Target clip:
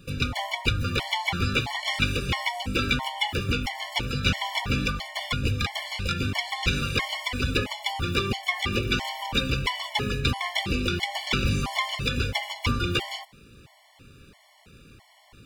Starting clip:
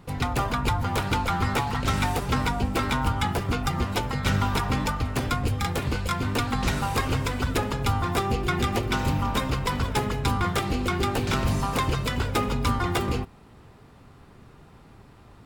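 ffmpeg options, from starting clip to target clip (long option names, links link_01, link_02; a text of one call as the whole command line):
ffmpeg -i in.wav -filter_complex "[0:a]acrossover=split=5000[link_01][link_02];[link_02]acompressor=threshold=-51dB:ratio=4:attack=1:release=60[link_03];[link_01][link_03]amix=inputs=2:normalize=0,highshelf=frequency=1800:width_type=q:width=1.5:gain=8.5,afftfilt=real='re*gt(sin(2*PI*1.5*pts/sr)*(1-2*mod(floor(b*sr/1024/580),2)),0)':imag='im*gt(sin(2*PI*1.5*pts/sr)*(1-2*mod(floor(b*sr/1024/580),2)),0)':win_size=1024:overlap=0.75" out.wav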